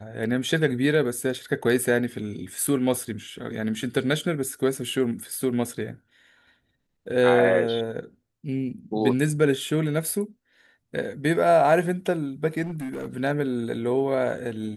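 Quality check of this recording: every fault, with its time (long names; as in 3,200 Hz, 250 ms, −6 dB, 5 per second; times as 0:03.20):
0:12.62–0:13.06: clipping −28 dBFS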